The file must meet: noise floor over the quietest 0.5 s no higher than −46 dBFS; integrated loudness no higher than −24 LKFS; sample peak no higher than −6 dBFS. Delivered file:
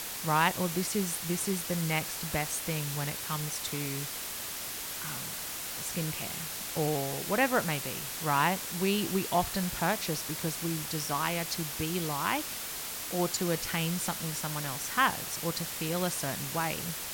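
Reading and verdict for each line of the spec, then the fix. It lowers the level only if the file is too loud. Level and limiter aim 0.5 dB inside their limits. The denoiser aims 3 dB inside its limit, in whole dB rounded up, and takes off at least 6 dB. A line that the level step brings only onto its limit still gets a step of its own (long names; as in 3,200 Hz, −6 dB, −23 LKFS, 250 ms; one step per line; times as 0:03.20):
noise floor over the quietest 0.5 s −38 dBFS: out of spec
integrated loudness −31.0 LKFS: in spec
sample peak −11.5 dBFS: in spec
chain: broadband denoise 11 dB, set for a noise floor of −38 dBFS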